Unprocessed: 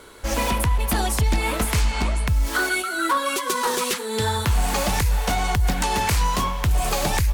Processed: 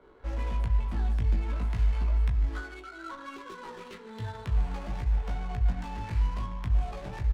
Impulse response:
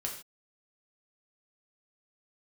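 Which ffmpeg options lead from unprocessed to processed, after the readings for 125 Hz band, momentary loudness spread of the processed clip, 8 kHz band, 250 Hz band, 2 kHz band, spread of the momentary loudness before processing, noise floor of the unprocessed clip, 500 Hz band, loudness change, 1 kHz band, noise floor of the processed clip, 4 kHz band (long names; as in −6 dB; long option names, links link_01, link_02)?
−6.0 dB, 14 LU, −32.0 dB, −13.0 dB, −19.0 dB, 2 LU, −29 dBFS, −17.0 dB, −9.0 dB, −17.5 dB, −47 dBFS, −23.0 dB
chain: -filter_complex "[0:a]acrusher=bits=5:mode=log:mix=0:aa=0.000001,flanger=delay=15.5:depth=2.1:speed=0.4,asplit=2[link_01][link_02];[1:a]atrim=start_sample=2205,adelay=21[link_03];[link_02][link_03]afir=irnorm=-1:irlink=0,volume=-10dB[link_04];[link_01][link_04]amix=inputs=2:normalize=0,acrossover=split=190[link_05][link_06];[link_06]acompressor=threshold=-40dB:ratio=2[link_07];[link_05][link_07]amix=inputs=2:normalize=0,lowpass=12000,asplit=2[link_08][link_09];[link_09]adelay=18,volume=-7.5dB[link_10];[link_08][link_10]amix=inputs=2:normalize=0,aecho=1:1:149:0.237,adynamicsmooth=sensitivity=6:basefreq=1100,volume=-7dB"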